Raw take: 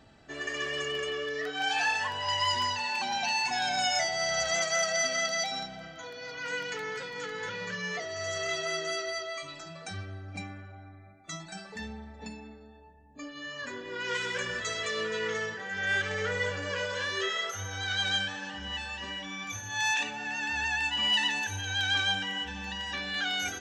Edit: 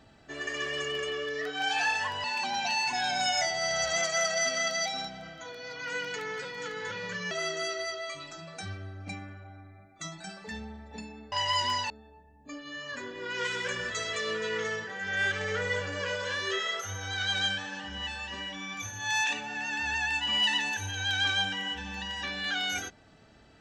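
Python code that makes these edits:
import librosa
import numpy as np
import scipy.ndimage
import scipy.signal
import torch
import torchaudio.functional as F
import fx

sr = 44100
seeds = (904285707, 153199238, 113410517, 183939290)

y = fx.edit(x, sr, fx.move(start_s=2.24, length_s=0.58, to_s=12.6),
    fx.cut(start_s=7.89, length_s=0.7), tone=tone)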